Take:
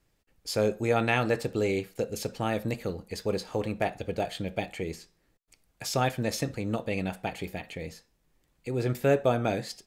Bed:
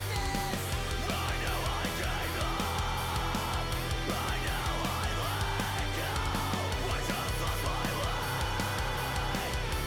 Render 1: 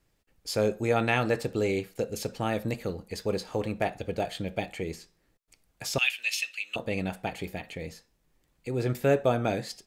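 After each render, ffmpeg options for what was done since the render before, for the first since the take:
ffmpeg -i in.wav -filter_complex "[0:a]asettb=1/sr,asplit=3[link_01][link_02][link_03];[link_01]atrim=end=5.984[link_04];[link_02]atrim=start=5.98:end=6.76,asetpts=PTS-STARTPTS,afade=type=in:duration=0.004:curve=qsin,afade=type=out:start_time=0.776:duration=0.004:curve=qsin,highpass=frequency=2700:width_type=q:width=8.3[link_05];[link_03]atrim=start=6.756[link_06];[link_04][link_05]acrossfade=duration=0.004:curve1=hsin:curve2=qsin[link_07];[link_07][link_06]acrossfade=duration=0.004:curve1=qsin:curve2=hsin" out.wav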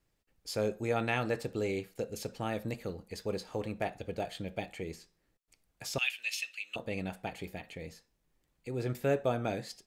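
ffmpeg -i in.wav -af "volume=-6dB" out.wav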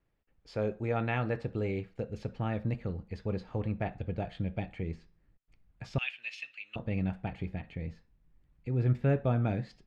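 ffmpeg -i in.wav -af "lowpass=2400,asubboost=boost=4:cutoff=210" out.wav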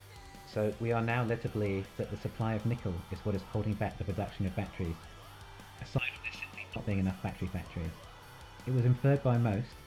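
ffmpeg -i in.wav -i bed.wav -filter_complex "[1:a]volume=-19dB[link_01];[0:a][link_01]amix=inputs=2:normalize=0" out.wav

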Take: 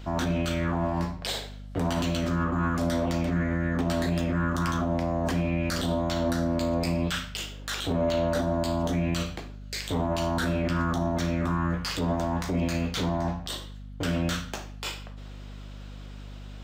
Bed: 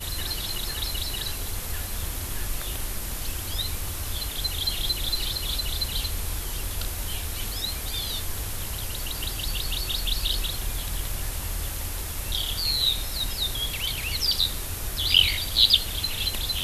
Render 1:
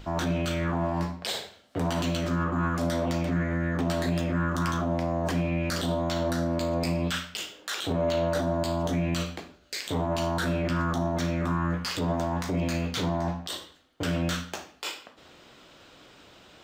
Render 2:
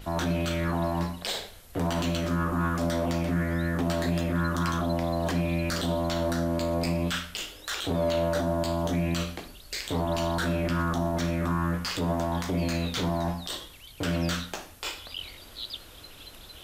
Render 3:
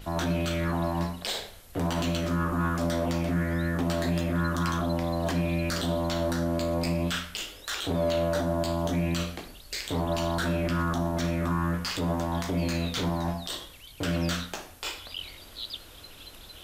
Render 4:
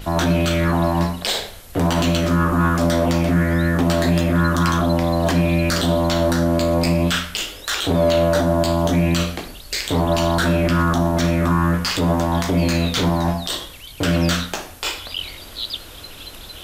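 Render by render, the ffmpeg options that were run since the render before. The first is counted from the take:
ffmpeg -i in.wav -af "bandreject=frequency=50:width_type=h:width=6,bandreject=frequency=100:width_type=h:width=6,bandreject=frequency=150:width_type=h:width=6,bandreject=frequency=200:width_type=h:width=6,bandreject=frequency=250:width_type=h:width=6" out.wav
ffmpeg -i in.wav -i bed.wav -filter_complex "[1:a]volume=-20dB[link_01];[0:a][link_01]amix=inputs=2:normalize=0" out.wav
ffmpeg -i in.wav -af "bandreject=frequency=61.6:width_type=h:width=4,bandreject=frequency=123.2:width_type=h:width=4,bandreject=frequency=184.8:width_type=h:width=4,bandreject=frequency=246.4:width_type=h:width=4,bandreject=frequency=308:width_type=h:width=4,bandreject=frequency=369.6:width_type=h:width=4,bandreject=frequency=431.2:width_type=h:width=4,bandreject=frequency=492.8:width_type=h:width=4,bandreject=frequency=554.4:width_type=h:width=4,bandreject=frequency=616:width_type=h:width=4,bandreject=frequency=677.6:width_type=h:width=4,bandreject=frequency=739.2:width_type=h:width=4,bandreject=frequency=800.8:width_type=h:width=4,bandreject=frequency=862.4:width_type=h:width=4,bandreject=frequency=924:width_type=h:width=4,bandreject=frequency=985.6:width_type=h:width=4,bandreject=frequency=1047.2:width_type=h:width=4,bandreject=frequency=1108.8:width_type=h:width=4,bandreject=frequency=1170.4:width_type=h:width=4,bandreject=frequency=1232:width_type=h:width=4,bandreject=frequency=1293.6:width_type=h:width=4,bandreject=frequency=1355.2:width_type=h:width=4,bandreject=frequency=1416.8:width_type=h:width=4,bandreject=frequency=1478.4:width_type=h:width=4,bandreject=frequency=1540:width_type=h:width=4,bandreject=frequency=1601.6:width_type=h:width=4,bandreject=frequency=1663.2:width_type=h:width=4,bandreject=frequency=1724.8:width_type=h:width=4,bandreject=frequency=1786.4:width_type=h:width=4,bandreject=frequency=1848:width_type=h:width=4,bandreject=frequency=1909.6:width_type=h:width=4,bandreject=frequency=1971.2:width_type=h:width=4,bandreject=frequency=2032.8:width_type=h:width=4,bandreject=frequency=2094.4:width_type=h:width=4,bandreject=frequency=2156:width_type=h:width=4,bandreject=frequency=2217.6:width_type=h:width=4,bandreject=frequency=2279.2:width_type=h:width=4,bandreject=frequency=2340.8:width_type=h:width=4,bandreject=frequency=2402.4:width_type=h:width=4" out.wav
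ffmpeg -i in.wav -af "volume=10dB" out.wav

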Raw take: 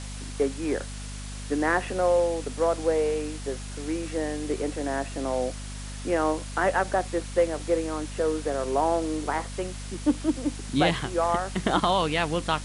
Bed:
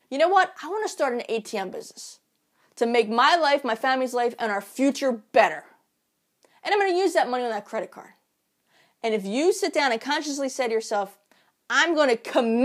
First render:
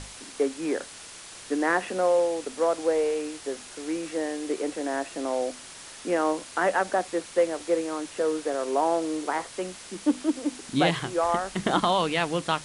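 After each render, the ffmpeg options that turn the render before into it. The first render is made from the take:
ffmpeg -i in.wav -af "bandreject=frequency=50:width_type=h:width=6,bandreject=frequency=100:width_type=h:width=6,bandreject=frequency=150:width_type=h:width=6,bandreject=frequency=200:width_type=h:width=6,bandreject=frequency=250:width_type=h:width=6" out.wav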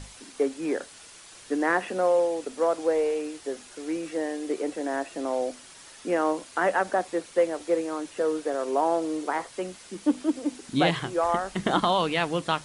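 ffmpeg -i in.wav -af "afftdn=noise_reduction=6:noise_floor=-44" out.wav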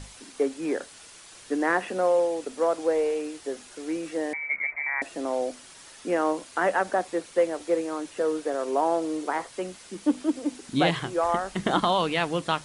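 ffmpeg -i in.wav -filter_complex "[0:a]asettb=1/sr,asplit=3[link_01][link_02][link_03];[link_01]atrim=end=4.334[link_04];[link_02]atrim=start=4.33:end=5.02,asetpts=PTS-STARTPTS,afade=type=in:duration=0.004:curve=qsin,afade=type=out:start_time=0.686:duration=0.004:curve=qsin,lowpass=frequency=2200:width_type=q:width=0.5098,lowpass=frequency=2200:width_type=q:width=0.6013,lowpass=frequency=2200:width_type=q:width=0.9,lowpass=frequency=2200:width_type=q:width=2.563,afreqshift=-2600[link_05];[link_03]atrim=start=5.016[link_06];[link_04][link_05]acrossfade=duration=0.004:curve1=hsin:curve2=qsin[link_07];[link_07][link_06]acrossfade=duration=0.004:curve1=qsin:curve2=hsin" out.wav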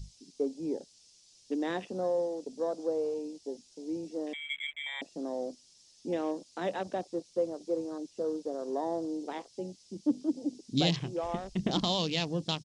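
ffmpeg -i in.wav -af "afwtdn=0.0178,firequalizer=gain_entry='entry(170,0);entry(300,-5);entry(1400,-19);entry(2700,-4);entry(5200,11);entry(9700,-5)':delay=0.05:min_phase=1" out.wav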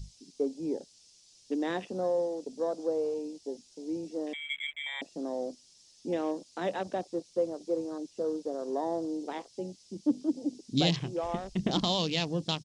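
ffmpeg -i in.wav -af "volume=1dB" out.wav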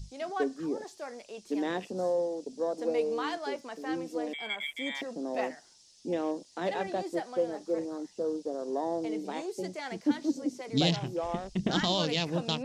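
ffmpeg -i in.wav -i bed.wav -filter_complex "[1:a]volume=-17dB[link_01];[0:a][link_01]amix=inputs=2:normalize=0" out.wav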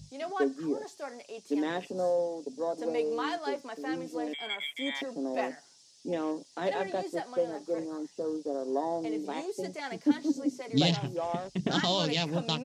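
ffmpeg -i in.wav -af "highpass=100,aecho=1:1:7.2:0.36" out.wav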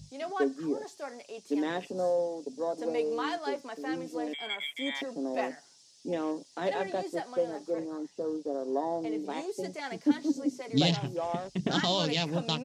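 ffmpeg -i in.wav -filter_complex "[0:a]asettb=1/sr,asplit=3[link_01][link_02][link_03];[link_01]atrim=end=7.704[link_04];[link_02]atrim=start=7.7:end=9.3,asetpts=PTS-STARTPTS,afade=type=in:duration=0.004:curve=qsin,afade=type=out:start_time=1.596:duration=0.004:curve=qsin,highshelf=frequency=5100:gain=-5.5[link_05];[link_03]atrim=start=9.296[link_06];[link_04][link_05]acrossfade=duration=0.004:curve1=hsin:curve2=qsin[link_07];[link_07][link_06]acrossfade=duration=0.004:curve1=qsin:curve2=hsin" out.wav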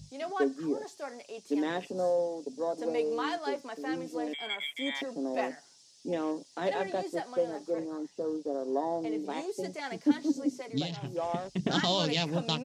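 ffmpeg -i in.wav -filter_complex "[0:a]asplit=2[link_01][link_02];[link_01]atrim=end=10.89,asetpts=PTS-STARTPTS,afade=type=out:start_time=10.6:duration=0.29:silence=0.211349[link_03];[link_02]atrim=start=10.89,asetpts=PTS-STARTPTS,afade=type=in:duration=0.29:silence=0.211349[link_04];[link_03][link_04]concat=n=2:v=0:a=1" out.wav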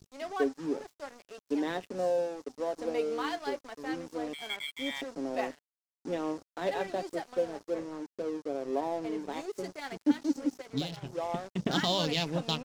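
ffmpeg -i in.wav -af "aeval=exprs='sgn(val(0))*max(abs(val(0))-0.00501,0)':channel_layout=same" out.wav

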